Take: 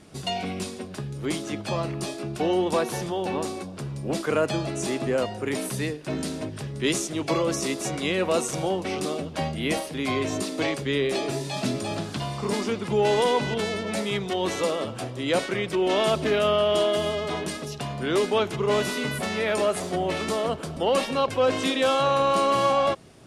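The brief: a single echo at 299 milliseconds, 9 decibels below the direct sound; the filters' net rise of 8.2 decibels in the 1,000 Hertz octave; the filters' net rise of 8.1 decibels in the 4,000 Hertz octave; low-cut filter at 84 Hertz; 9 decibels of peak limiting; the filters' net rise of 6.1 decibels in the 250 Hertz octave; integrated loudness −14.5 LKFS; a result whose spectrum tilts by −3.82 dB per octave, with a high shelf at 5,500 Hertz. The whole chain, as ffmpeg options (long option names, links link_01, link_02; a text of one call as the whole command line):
ffmpeg -i in.wav -af "highpass=84,equalizer=frequency=250:width_type=o:gain=7.5,equalizer=frequency=1000:width_type=o:gain=9,equalizer=frequency=4000:width_type=o:gain=7.5,highshelf=frequency=5500:gain=6.5,alimiter=limit=-12.5dB:level=0:latency=1,aecho=1:1:299:0.355,volume=8dB" out.wav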